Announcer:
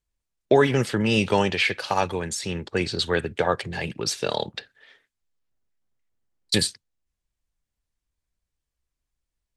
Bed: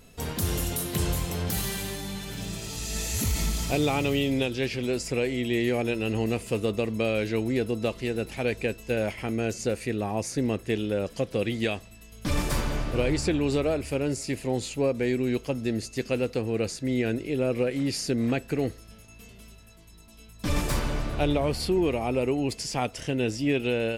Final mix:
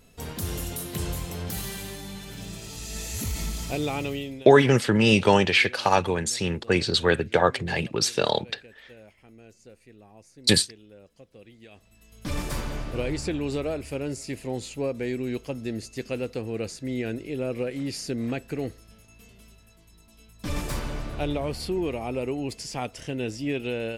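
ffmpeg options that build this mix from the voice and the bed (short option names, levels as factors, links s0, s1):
-filter_complex "[0:a]adelay=3950,volume=1.33[s0];[1:a]volume=5.96,afade=t=out:st=4.02:d=0.46:silence=0.112202,afade=t=in:st=11.7:d=0.5:silence=0.112202[s1];[s0][s1]amix=inputs=2:normalize=0"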